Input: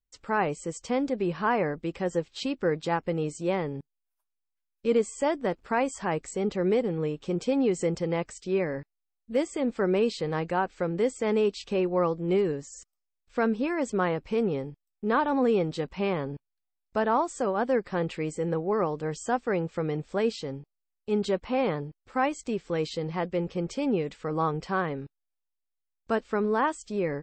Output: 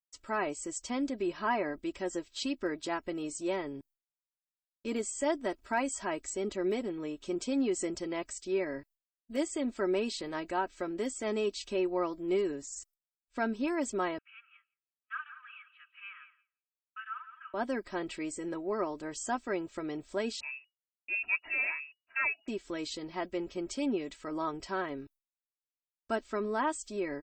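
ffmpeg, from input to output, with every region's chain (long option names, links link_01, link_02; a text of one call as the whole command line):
ffmpeg -i in.wav -filter_complex "[0:a]asettb=1/sr,asplit=3[link_01][link_02][link_03];[link_01]atrim=end=14.184[link_04];[link_02]atrim=start=14.18:end=17.54,asetpts=PTS-STARTPTS,afade=type=in:duration=0.004:curve=qsin,afade=type=out:start_time=3.356:duration=0.004:curve=qsin,asuperpass=centerf=1900:order=12:qfactor=1.2,equalizer=frequency=2000:width=4.8:gain=-11,aecho=1:1:170|340|510|680:0.251|0.098|0.0382|0.0149,atrim=end_sample=148176[link_05];[link_03]atrim=start=17.536[link_06];[link_04][link_05]acrossfade=duration=0.004:curve1=hsin:curve2=qsin[link_07];[link_07][link_06]acrossfade=duration=0.004:curve1=qsin:curve2=hsin,asettb=1/sr,asplit=3[link_08][link_09][link_10];[link_08]atrim=end=20.404[link_11];[link_09]atrim=start=20.4:end=22.48,asetpts=PTS-STARTPTS,afade=type=in:duration=0.004:curve=qsin,afade=type=out:start_time=2.076:duration=0.004:curve=qsin,lowshelf=frequency=180:gain=-9,lowpass=frequency=2500:width_type=q:width=0.5098,lowpass=frequency=2500:width_type=q:width=0.6013,lowpass=frequency=2500:width_type=q:width=0.9,lowpass=frequency=2500:width_type=q:width=2.563,afreqshift=-2900[link_12];[link_10]atrim=start=22.476[link_13];[link_11][link_12]acrossfade=duration=0.004:curve1=hsin:curve2=qsin[link_14];[link_14][link_13]acrossfade=duration=0.004:curve1=qsin:curve2=hsin,aemphasis=mode=production:type=50kf,agate=range=-33dB:threshold=-48dB:ratio=3:detection=peak,aecho=1:1:3.1:0.76,volume=-7.5dB" out.wav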